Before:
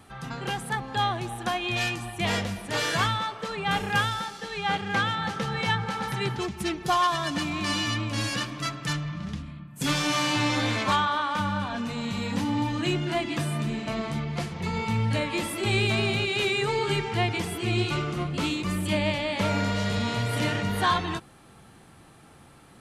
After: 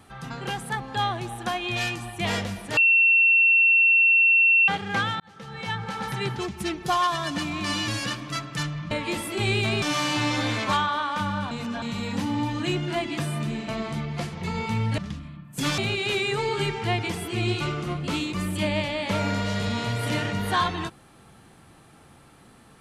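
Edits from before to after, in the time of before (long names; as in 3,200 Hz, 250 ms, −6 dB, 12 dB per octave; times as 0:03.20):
0:02.77–0:04.68: beep over 2,710 Hz −14.5 dBFS
0:05.20–0:06.06: fade in
0:07.88–0:08.18: remove
0:09.21–0:10.01: swap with 0:15.17–0:16.08
0:11.70–0:12.01: reverse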